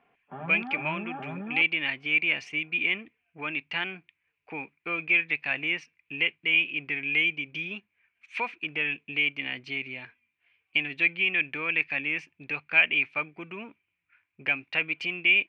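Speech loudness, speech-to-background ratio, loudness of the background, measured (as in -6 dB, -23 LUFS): -26.5 LUFS, 12.5 dB, -39.0 LUFS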